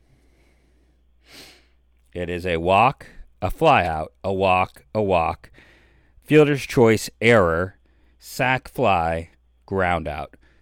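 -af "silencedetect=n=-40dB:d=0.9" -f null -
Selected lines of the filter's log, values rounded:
silence_start: 0.00
silence_end: 1.31 | silence_duration: 1.31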